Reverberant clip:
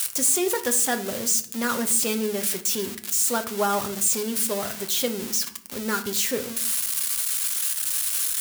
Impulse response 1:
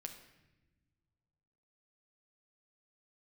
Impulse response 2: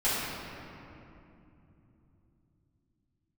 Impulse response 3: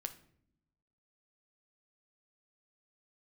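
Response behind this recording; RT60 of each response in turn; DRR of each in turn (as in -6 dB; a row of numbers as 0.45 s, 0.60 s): 3; no single decay rate, 2.9 s, 0.65 s; 4.5 dB, -14.0 dB, 6.0 dB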